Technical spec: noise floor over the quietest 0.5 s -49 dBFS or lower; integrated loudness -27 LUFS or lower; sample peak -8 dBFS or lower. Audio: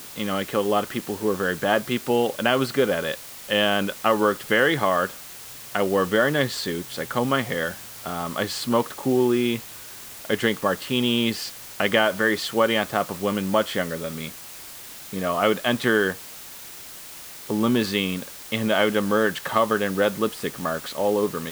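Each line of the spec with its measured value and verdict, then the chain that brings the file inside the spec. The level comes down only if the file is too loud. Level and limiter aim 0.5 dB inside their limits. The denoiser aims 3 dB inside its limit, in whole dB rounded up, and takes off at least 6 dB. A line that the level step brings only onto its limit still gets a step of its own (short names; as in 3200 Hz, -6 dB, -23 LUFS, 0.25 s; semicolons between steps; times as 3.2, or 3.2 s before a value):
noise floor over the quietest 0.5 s -40 dBFS: fail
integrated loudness -23.5 LUFS: fail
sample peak -4.5 dBFS: fail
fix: denoiser 8 dB, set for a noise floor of -40 dBFS; gain -4 dB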